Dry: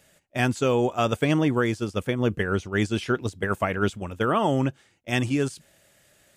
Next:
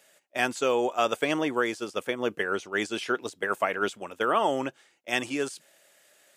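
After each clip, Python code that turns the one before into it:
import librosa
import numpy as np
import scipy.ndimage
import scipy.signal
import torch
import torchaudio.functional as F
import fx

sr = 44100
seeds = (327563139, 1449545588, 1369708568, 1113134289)

y = scipy.signal.sosfilt(scipy.signal.butter(2, 410.0, 'highpass', fs=sr, output='sos'), x)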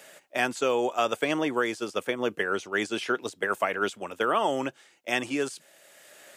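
y = fx.band_squash(x, sr, depth_pct=40)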